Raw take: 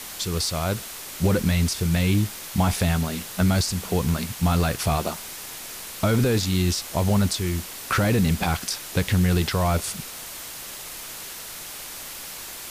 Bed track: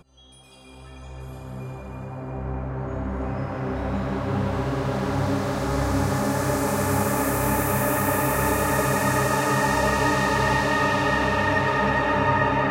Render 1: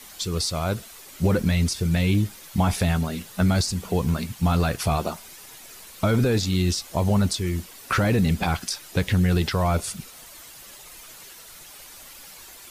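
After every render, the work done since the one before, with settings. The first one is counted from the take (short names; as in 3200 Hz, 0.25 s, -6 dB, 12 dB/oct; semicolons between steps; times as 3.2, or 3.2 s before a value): denoiser 10 dB, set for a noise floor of -37 dBFS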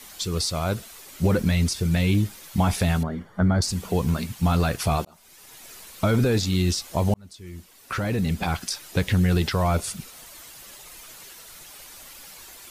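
3.03–3.62 polynomial smoothing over 41 samples; 5.05–5.68 fade in; 7.14–8.8 fade in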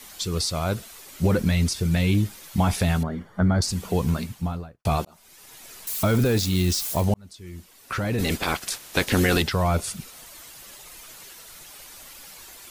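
4.08–4.85 studio fade out; 5.87–7.05 switching spikes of -26 dBFS; 8.18–9.41 spectral limiter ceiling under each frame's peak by 18 dB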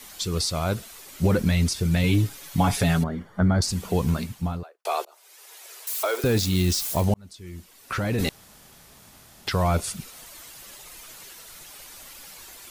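2.03–3.04 comb 7.1 ms; 4.63–6.24 steep high-pass 380 Hz 48 dB/oct; 8.29–9.47 room tone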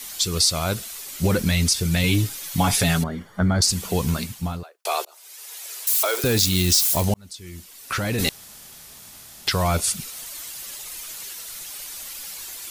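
high shelf 2300 Hz +10 dB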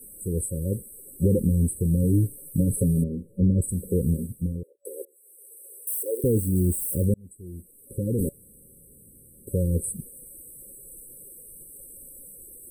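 FFT band-reject 570–7900 Hz; high shelf 8000 Hz -11 dB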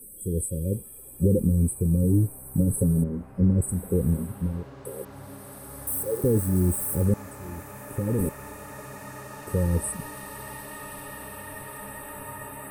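add bed track -19 dB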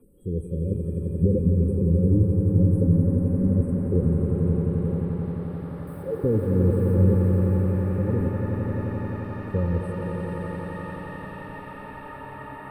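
air absorption 400 m; swelling echo 87 ms, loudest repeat 5, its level -7.5 dB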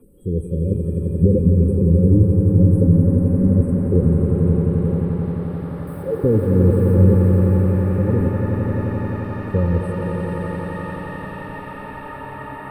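gain +6 dB; limiter -3 dBFS, peak gain reduction 1 dB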